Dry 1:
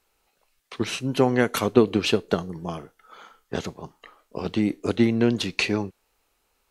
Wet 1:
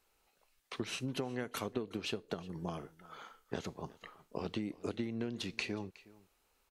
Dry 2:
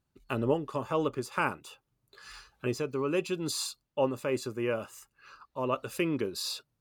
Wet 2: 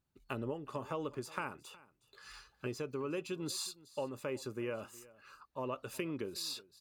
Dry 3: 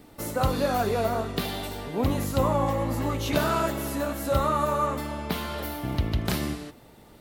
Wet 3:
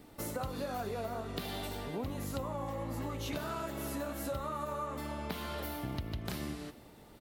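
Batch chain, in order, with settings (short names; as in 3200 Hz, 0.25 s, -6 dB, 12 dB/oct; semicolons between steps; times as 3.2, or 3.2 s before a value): compressor 8:1, threshold -30 dBFS; on a send: echo 0.366 s -21 dB; on the sum: gain -4.5 dB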